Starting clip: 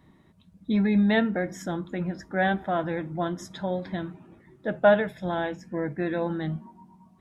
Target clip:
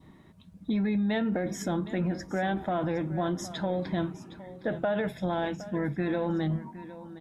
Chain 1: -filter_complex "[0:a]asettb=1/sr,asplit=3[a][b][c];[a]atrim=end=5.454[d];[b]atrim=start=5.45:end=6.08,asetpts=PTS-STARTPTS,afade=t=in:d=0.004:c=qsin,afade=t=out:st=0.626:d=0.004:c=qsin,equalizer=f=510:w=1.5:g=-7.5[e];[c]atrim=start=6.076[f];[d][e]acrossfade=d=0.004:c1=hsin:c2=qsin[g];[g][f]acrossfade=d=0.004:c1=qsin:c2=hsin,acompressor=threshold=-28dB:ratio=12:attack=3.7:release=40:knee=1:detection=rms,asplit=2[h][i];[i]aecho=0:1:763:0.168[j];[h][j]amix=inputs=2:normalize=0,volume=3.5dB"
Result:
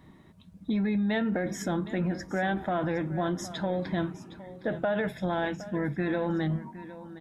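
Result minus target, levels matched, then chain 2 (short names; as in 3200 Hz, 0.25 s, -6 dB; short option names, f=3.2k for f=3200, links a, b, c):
2000 Hz band +2.5 dB
-filter_complex "[0:a]asettb=1/sr,asplit=3[a][b][c];[a]atrim=end=5.454[d];[b]atrim=start=5.45:end=6.08,asetpts=PTS-STARTPTS,afade=t=in:d=0.004:c=qsin,afade=t=out:st=0.626:d=0.004:c=qsin,equalizer=f=510:w=1.5:g=-7.5[e];[c]atrim=start=6.076[f];[d][e]acrossfade=d=0.004:c1=hsin:c2=qsin[g];[g][f]acrossfade=d=0.004:c1=qsin:c2=hsin,acompressor=threshold=-28dB:ratio=12:attack=3.7:release=40:knee=1:detection=rms,adynamicequalizer=threshold=0.00224:dfrequency=1700:dqfactor=2.1:tfrequency=1700:tqfactor=2.1:attack=5:release=100:ratio=0.375:range=3:mode=cutabove:tftype=bell,asplit=2[h][i];[i]aecho=0:1:763:0.168[j];[h][j]amix=inputs=2:normalize=0,volume=3.5dB"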